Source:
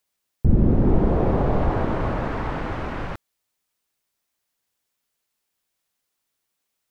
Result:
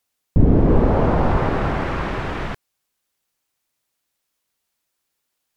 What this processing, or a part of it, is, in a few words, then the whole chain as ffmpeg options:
nightcore: -af "asetrate=54684,aresample=44100,volume=3dB"

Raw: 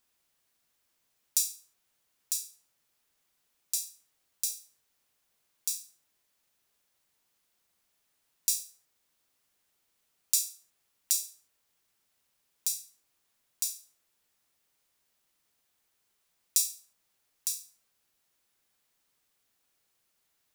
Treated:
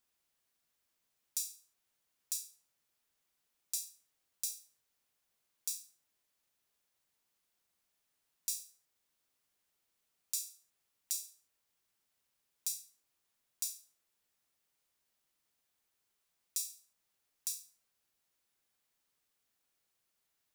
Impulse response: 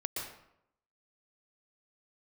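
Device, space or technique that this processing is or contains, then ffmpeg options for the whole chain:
limiter into clipper: -af "alimiter=limit=-7.5dB:level=0:latency=1:release=416,asoftclip=type=hard:threshold=-11.5dB,volume=-6dB"

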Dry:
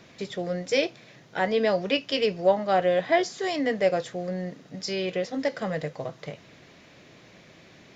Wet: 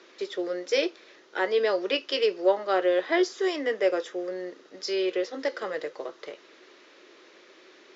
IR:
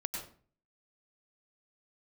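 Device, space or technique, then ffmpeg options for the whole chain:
phone speaker on a table: -filter_complex "[0:a]highpass=f=350:w=0.5412,highpass=f=350:w=1.3066,equalizer=f=360:t=q:w=4:g=8,equalizer=f=700:t=q:w=4:g=-8,equalizer=f=1.3k:t=q:w=4:g=4,equalizer=f=2.3k:t=q:w=4:g=-3,lowpass=f=6.6k:w=0.5412,lowpass=f=6.6k:w=1.3066,asettb=1/sr,asplit=3[a][b][c];[a]atrim=end=3.334[d];[b]atrim=start=3.33:end=4.31,asetpts=PTS-STARTPTS,afade=t=in:d=0.004:c=qsin,afade=t=out:st=0.976:d=0.004:c=qsin,bandreject=f=4.3k:w=7.1[e];[c]atrim=start=4.306[f];[d][e]acrossfade=d=0.004:c1=hsin:c2=qsin[g];[g][f]acrossfade=d=0.004:c1=qsin:c2=hsin"

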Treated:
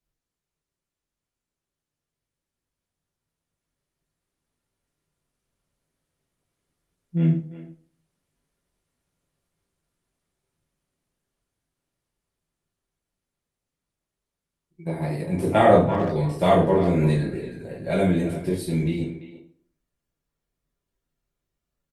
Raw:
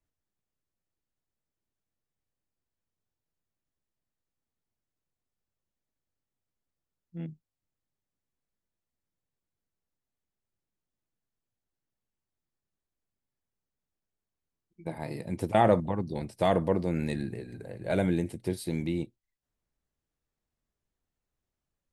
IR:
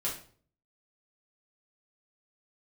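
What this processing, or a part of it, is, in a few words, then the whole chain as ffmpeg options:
speakerphone in a meeting room: -filter_complex "[0:a]asplit=3[a][b][c];[a]afade=t=out:st=15.31:d=0.02[d];[b]asplit=2[e][f];[f]adelay=34,volume=-7dB[g];[e][g]amix=inputs=2:normalize=0,afade=t=in:st=15.31:d=0.02,afade=t=out:st=17.11:d=0.02[h];[c]afade=t=in:st=17.11:d=0.02[i];[d][h][i]amix=inputs=3:normalize=0[j];[1:a]atrim=start_sample=2205[k];[j][k]afir=irnorm=-1:irlink=0,asplit=2[l][m];[m]adelay=340,highpass=300,lowpass=3.4k,asoftclip=type=hard:threshold=-13.5dB,volume=-12dB[n];[l][n]amix=inputs=2:normalize=0,dynaudnorm=f=280:g=31:m=12dB,volume=-1dB" -ar 48000 -c:a libopus -b:a 32k

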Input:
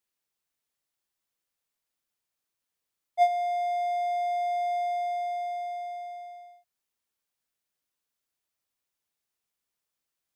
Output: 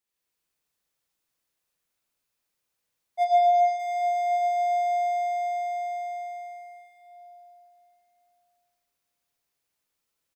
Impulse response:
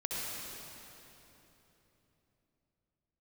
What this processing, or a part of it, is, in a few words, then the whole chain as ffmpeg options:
cave: -filter_complex "[0:a]aecho=1:1:260:0.376[a];[1:a]atrim=start_sample=2205[b];[a][b]afir=irnorm=-1:irlink=0,asplit=3[c][d][e];[c]afade=t=out:st=3.24:d=0.02[f];[d]lowpass=f=6.8k:w=0.5412,lowpass=f=6.8k:w=1.3066,afade=t=in:st=3.24:d=0.02,afade=t=out:st=3.78:d=0.02[g];[e]afade=t=in:st=3.78:d=0.02[h];[f][g][h]amix=inputs=3:normalize=0"

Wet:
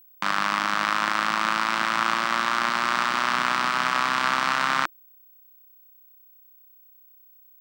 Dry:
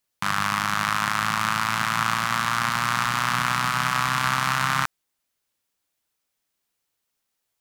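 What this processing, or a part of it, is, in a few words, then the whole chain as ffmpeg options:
old television with a line whistle: -af "highpass=f=210:w=0.5412,highpass=f=210:w=1.3066,equalizer=f=340:t=q:w=4:g=9,equalizer=f=570:t=q:w=4:g=6,equalizer=f=6.7k:t=q:w=4:g=-6,lowpass=f=7.7k:w=0.5412,lowpass=f=7.7k:w=1.3066,aeval=exprs='val(0)+0.00282*sin(2*PI*15734*n/s)':c=same"

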